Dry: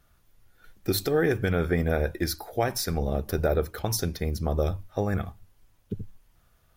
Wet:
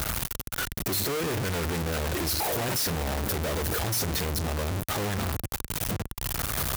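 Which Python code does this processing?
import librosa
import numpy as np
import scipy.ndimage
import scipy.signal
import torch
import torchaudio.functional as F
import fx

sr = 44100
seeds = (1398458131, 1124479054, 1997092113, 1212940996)

y = np.sign(x) * np.sqrt(np.mean(np.square(x)))
y = scipy.signal.sosfilt(scipy.signal.butter(2, 44.0, 'highpass', fs=sr, output='sos'), y)
y = fx.high_shelf(y, sr, hz=8600.0, db=4.0)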